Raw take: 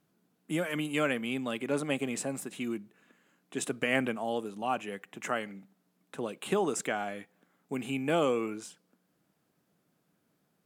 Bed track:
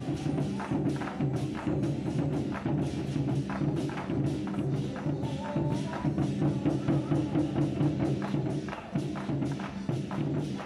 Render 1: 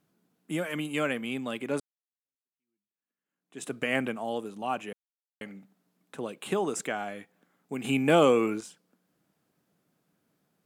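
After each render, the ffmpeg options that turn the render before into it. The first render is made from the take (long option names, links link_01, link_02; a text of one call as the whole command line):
ffmpeg -i in.wav -filter_complex "[0:a]asettb=1/sr,asplit=3[link_01][link_02][link_03];[link_01]atrim=end=7.844[link_04];[link_02]atrim=start=7.84:end=8.61,asetpts=PTS-STARTPTS,afade=type=in:duration=0.004:curve=qsin,afade=type=out:start_time=0.766:duration=0.004:curve=qsin,acontrast=76[link_05];[link_03]atrim=start=8.606[link_06];[link_04][link_05]acrossfade=duration=0.004:curve1=hsin:curve2=qsin[link_07];[link_07][link_06]acrossfade=duration=0.004:curve1=qsin:curve2=hsin,asplit=4[link_08][link_09][link_10][link_11];[link_08]atrim=end=1.8,asetpts=PTS-STARTPTS,afade=type=out:start_time=1.796:duration=0.004:curve=hsin[link_12];[link_09]atrim=start=1.8:end=4.93,asetpts=PTS-STARTPTS,afade=type=in:duration=1.93:curve=exp,afade=type=out:start_time=3.126:duration=0.004:curve=hsin[link_13];[link_10]atrim=start=4.93:end=5.41,asetpts=PTS-STARTPTS,volume=0[link_14];[link_11]atrim=start=5.41,asetpts=PTS-STARTPTS,afade=type=in:duration=0.004:curve=hsin[link_15];[link_12][link_13][link_14][link_15]concat=n=4:v=0:a=1" out.wav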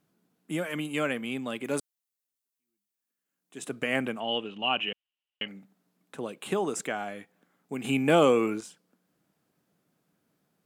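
ffmpeg -i in.wav -filter_complex "[0:a]asettb=1/sr,asplit=3[link_01][link_02][link_03];[link_01]atrim=end=1.644[link_04];[link_02]atrim=start=1.64:end=3.58,asetpts=PTS-STARTPTS,afade=type=in:duration=0.004:curve=qsin,afade=type=out:start_time=1.936:duration=0.004:curve=qsin,highshelf=frequency=5100:gain=10.5[link_05];[link_03]atrim=start=3.576[link_06];[link_04][link_05]acrossfade=duration=0.004:curve1=hsin:curve2=qsin[link_07];[link_07][link_06]acrossfade=duration=0.004:curve1=qsin:curve2=hsin,asettb=1/sr,asplit=3[link_08][link_09][link_10];[link_08]atrim=end=4.204[link_11];[link_09]atrim=start=4.2:end=5.48,asetpts=PTS-STARTPTS,afade=type=in:duration=0.004:curve=qsin,afade=type=out:start_time=1.276:duration=0.004:curve=qsin,lowpass=frequency=2900:width_type=q:width=12[link_12];[link_10]atrim=start=5.476[link_13];[link_11][link_12]acrossfade=duration=0.004:curve1=hsin:curve2=qsin[link_14];[link_14][link_13]acrossfade=duration=0.004:curve1=qsin:curve2=hsin" out.wav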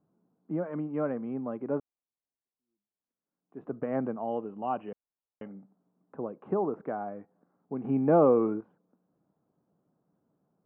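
ffmpeg -i in.wav -af "lowpass=frequency=1100:width=0.5412,lowpass=frequency=1100:width=1.3066" out.wav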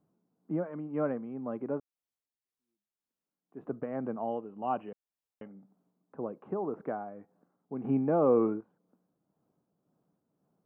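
ffmpeg -i in.wav -af "tremolo=f=1.9:d=0.49" out.wav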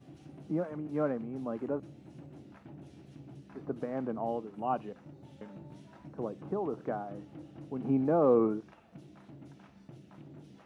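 ffmpeg -i in.wav -i bed.wav -filter_complex "[1:a]volume=-20dB[link_01];[0:a][link_01]amix=inputs=2:normalize=0" out.wav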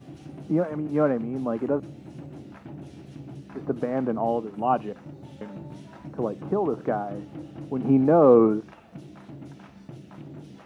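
ffmpeg -i in.wav -af "volume=9dB" out.wav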